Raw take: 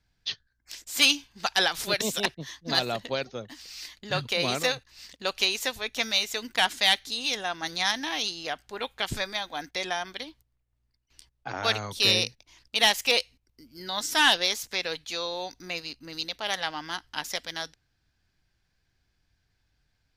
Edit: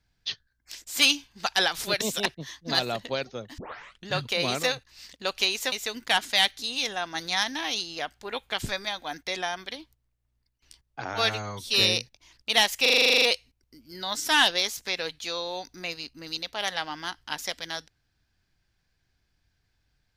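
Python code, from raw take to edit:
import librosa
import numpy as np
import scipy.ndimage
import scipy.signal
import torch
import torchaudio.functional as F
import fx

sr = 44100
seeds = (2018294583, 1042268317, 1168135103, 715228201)

y = fx.edit(x, sr, fx.tape_start(start_s=3.58, length_s=0.51),
    fx.cut(start_s=5.72, length_s=0.48),
    fx.stretch_span(start_s=11.62, length_s=0.44, factor=1.5),
    fx.stutter(start_s=13.08, slice_s=0.04, count=11), tone=tone)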